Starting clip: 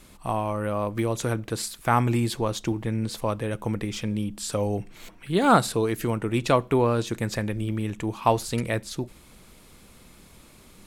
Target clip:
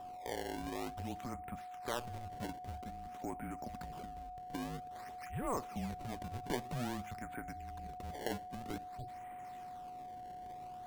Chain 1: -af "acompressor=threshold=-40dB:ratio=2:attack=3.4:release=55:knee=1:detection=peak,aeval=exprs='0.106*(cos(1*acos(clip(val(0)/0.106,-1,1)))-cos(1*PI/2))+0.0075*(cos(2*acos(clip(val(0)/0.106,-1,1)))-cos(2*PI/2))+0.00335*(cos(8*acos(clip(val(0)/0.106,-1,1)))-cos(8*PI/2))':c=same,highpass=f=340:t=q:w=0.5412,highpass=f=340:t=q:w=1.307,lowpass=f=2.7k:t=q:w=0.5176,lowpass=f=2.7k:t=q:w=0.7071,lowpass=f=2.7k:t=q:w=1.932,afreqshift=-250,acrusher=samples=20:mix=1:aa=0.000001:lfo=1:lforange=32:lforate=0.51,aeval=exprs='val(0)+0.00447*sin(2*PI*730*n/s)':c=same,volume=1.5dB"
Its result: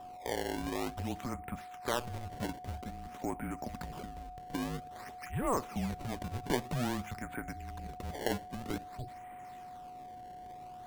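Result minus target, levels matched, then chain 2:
compressor: peak gain reduction -5.5 dB
-af "acompressor=threshold=-51dB:ratio=2:attack=3.4:release=55:knee=1:detection=peak,aeval=exprs='0.106*(cos(1*acos(clip(val(0)/0.106,-1,1)))-cos(1*PI/2))+0.0075*(cos(2*acos(clip(val(0)/0.106,-1,1)))-cos(2*PI/2))+0.00335*(cos(8*acos(clip(val(0)/0.106,-1,1)))-cos(8*PI/2))':c=same,highpass=f=340:t=q:w=0.5412,highpass=f=340:t=q:w=1.307,lowpass=f=2.7k:t=q:w=0.5176,lowpass=f=2.7k:t=q:w=0.7071,lowpass=f=2.7k:t=q:w=1.932,afreqshift=-250,acrusher=samples=20:mix=1:aa=0.000001:lfo=1:lforange=32:lforate=0.51,aeval=exprs='val(0)+0.00447*sin(2*PI*730*n/s)':c=same,volume=1.5dB"

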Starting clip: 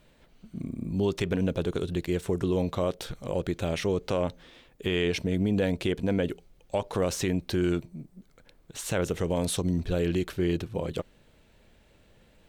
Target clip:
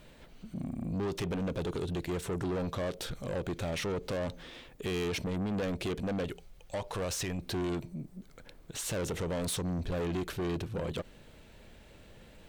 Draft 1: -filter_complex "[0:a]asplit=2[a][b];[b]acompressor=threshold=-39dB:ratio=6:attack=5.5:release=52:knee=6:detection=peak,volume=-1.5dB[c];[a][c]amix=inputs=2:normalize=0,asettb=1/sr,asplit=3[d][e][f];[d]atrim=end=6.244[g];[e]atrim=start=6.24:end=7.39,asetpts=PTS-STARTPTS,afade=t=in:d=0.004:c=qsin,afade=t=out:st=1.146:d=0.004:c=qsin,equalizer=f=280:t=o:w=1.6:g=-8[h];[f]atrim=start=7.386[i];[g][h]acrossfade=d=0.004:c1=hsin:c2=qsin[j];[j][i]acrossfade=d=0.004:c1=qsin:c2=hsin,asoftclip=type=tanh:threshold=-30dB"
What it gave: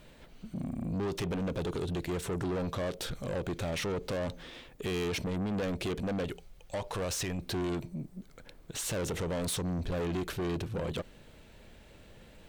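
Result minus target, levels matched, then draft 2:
compressor: peak gain reduction -9 dB
-filter_complex "[0:a]asplit=2[a][b];[b]acompressor=threshold=-50dB:ratio=6:attack=5.5:release=52:knee=6:detection=peak,volume=-1.5dB[c];[a][c]amix=inputs=2:normalize=0,asettb=1/sr,asplit=3[d][e][f];[d]atrim=end=6.244[g];[e]atrim=start=6.24:end=7.39,asetpts=PTS-STARTPTS,afade=t=in:d=0.004:c=qsin,afade=t=out:st=1.146:d=0.004:c=qsin,equalizer=f=280:t=o:w=1.6:g=-8[h];[f]atrim=start=7.386[i];[g][h]acrossfade=d=0.004:c1=hsin:c2=qsin[j];[j][i]acrossfade=d=0.004:c1=qsin:c2=hsin,asoftclip=type=tanh:threshold=-30dB"

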